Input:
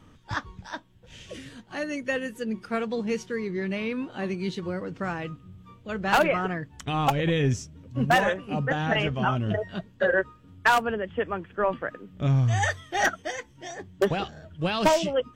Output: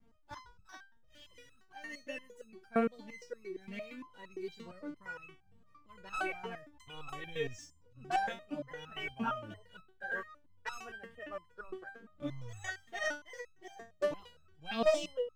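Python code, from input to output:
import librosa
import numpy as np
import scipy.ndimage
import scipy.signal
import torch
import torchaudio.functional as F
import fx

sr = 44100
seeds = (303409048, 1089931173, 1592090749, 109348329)

y = scipy.signal.sosfilt(scipy.signal.butter(4, 11000.0, 'lowpass', fs=sr, output='sos'), x)
y = fx.backlash(y, sr, play_db=-48.0)
y = fx.resonator_held(y, sr, hz=8.7, low_hz=230.0, high_hz=1300.0)
y = y * librosa.db_to_amplitude(4.0)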